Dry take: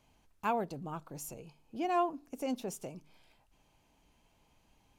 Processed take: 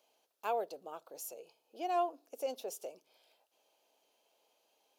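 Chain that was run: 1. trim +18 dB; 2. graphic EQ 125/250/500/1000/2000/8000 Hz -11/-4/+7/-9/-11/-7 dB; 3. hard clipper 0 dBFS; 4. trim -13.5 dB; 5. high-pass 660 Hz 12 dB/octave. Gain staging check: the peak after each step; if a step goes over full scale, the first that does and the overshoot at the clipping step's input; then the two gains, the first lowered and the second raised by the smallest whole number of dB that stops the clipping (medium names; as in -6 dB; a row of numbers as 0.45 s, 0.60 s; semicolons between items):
-3.0 dBFS, -5.5 dBFS, -5.5 dBFS, -19.0 dBFS, -23.0 dBFS; nothing clips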